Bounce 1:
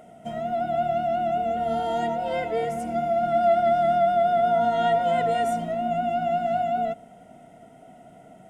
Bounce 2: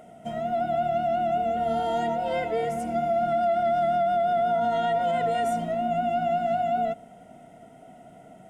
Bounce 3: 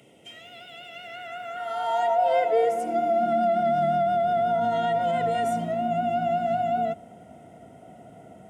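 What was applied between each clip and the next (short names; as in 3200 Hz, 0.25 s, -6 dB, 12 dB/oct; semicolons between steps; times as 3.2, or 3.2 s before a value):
limiter -18 dBFS, peak gain reduction 5.5 dB
high-pass sweep 2700 Hz -> 82 Hz, 0.85–4.44; band noise 100–650 Hz -56 dBFS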